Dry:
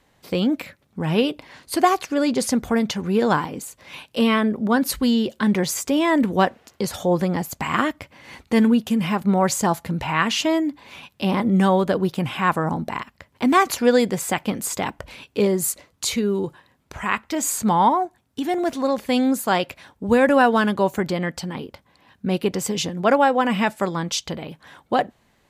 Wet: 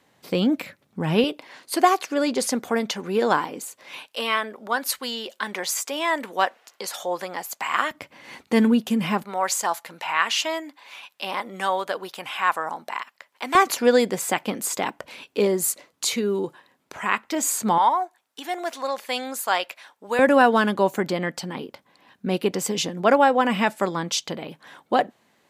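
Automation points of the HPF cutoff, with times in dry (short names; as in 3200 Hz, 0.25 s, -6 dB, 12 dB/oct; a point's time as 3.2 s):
130 Hz
from 1.24 s 310 Hz
from 4.07 s 710 Hz
from 7.91 s 190 Hz
from 9.24 s 760 Hz
from 13.55 s 250 Hz
from 17.78 s 710 Hz
from 20.19 s 200 Hz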